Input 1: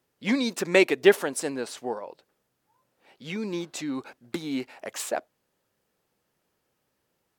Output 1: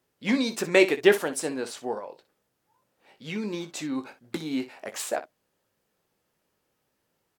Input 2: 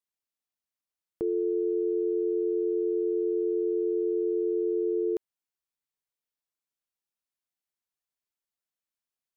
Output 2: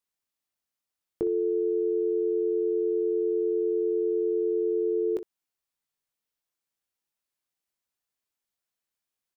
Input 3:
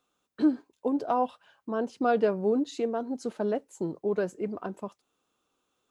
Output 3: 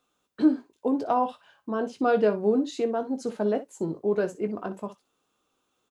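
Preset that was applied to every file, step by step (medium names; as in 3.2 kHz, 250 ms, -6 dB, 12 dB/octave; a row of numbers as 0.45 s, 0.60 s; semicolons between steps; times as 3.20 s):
early reflections 19 ms -9.5 dB, 61 ms -14 dB; normalise loudness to -27 LUFS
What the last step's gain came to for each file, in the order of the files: -0.5 dB, +3.0 dB, +2.0 dB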